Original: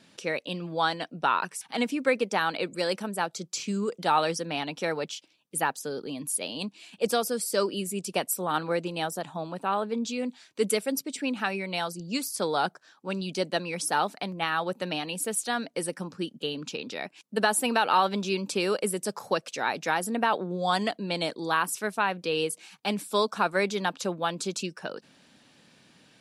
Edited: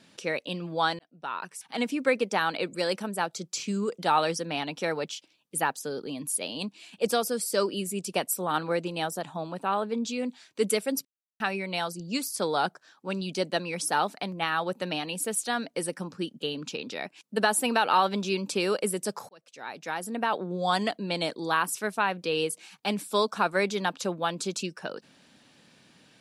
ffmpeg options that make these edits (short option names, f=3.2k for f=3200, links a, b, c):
-filter_complex "[0:a]asplit=5[a][b][c][d][e];[a]atrim=end=0.99,asetpts=PTS-STARTPTS,afade=t=out:st=0.986:d=0.004:c=hsin[f];[b]atrim=start=0.99:end=11.05,asetpts=PTS-STARTPTS,afade=t=in:d=0.97,afade=t=out:st=10.056:d=0.004:c=hsin[g];[c]atrim=start=11.05:end=11.4,asetpts=PTS-STARTPTS,volume=0[h];[d]atrim=start=11.4:end=19.29,asetpts=PTS-STARTPTS,afade=t=in:d=0.004:c=hsin,afade=t=out:st=7.886:d=0.004:c=hsin[i];[e]atrim=start=19.29,asetpts=PTS-STARTPTS,afade=t=in:d=1.31[j];[f][g][h][i][j]concat=n=5:v=0:a=1"